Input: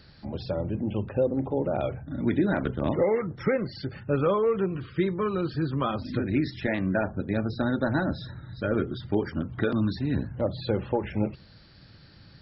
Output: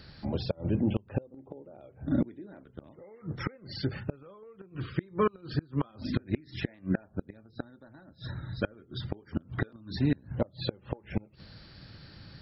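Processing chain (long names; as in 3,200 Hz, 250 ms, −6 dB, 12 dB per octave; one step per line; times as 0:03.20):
0:01.34–0:02.64: parametric band 380 Hz +7.5 dB 1.8 octaves
gate with flip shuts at −18 dBFS, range −30 dB
level +2.5 dB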